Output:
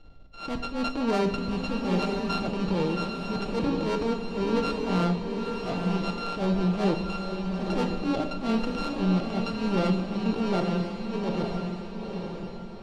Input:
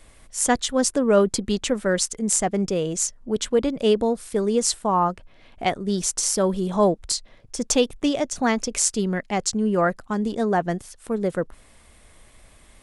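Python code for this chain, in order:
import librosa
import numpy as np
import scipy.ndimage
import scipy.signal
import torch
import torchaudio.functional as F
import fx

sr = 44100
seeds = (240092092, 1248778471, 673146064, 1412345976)

p1 = np.r_[np.sort(x[:len(x) // 32 * 32].reshape(-1, 32), axis=1).ravel(), x[len(x) // 32 * 32:]]
p2 = scipy.signal.sosfilt(scipy.signal.butter(4, 4000.0, 'lowpass', fs=sr, output='sos'), p1)
p3 = fx.peak_eq(p2, sr, hz=1700.0, db=-13.5, octaves=1.5)
p4 = 10.0 ** (-19.5 / 20.0) * np.tanh(p3 / 10.0 ** (-19.5 / 20.0))
p5 = fx.transient(p4, sr, attack_db=-11, sustain_db=3)
p6 = p5 + fx.echo_diffused(p5, sr, ms=936, feedback_pct=40, wet_db=-4, dry=0)
y = fx.room_shoebox(p6, sr, seeds[0], volume_m3=330.0, walls='mixed', distance_m=0.54)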